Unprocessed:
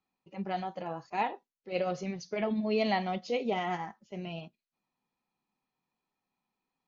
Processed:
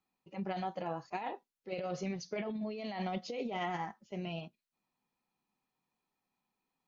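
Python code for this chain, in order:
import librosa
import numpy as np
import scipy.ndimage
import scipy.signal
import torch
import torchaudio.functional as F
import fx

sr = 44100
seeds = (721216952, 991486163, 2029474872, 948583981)

y = fx.over_compress(x, sr, threshold_db=-34.0, ratio=-1.0)
y = y * 10.0 ** (-3.0 / 20.0)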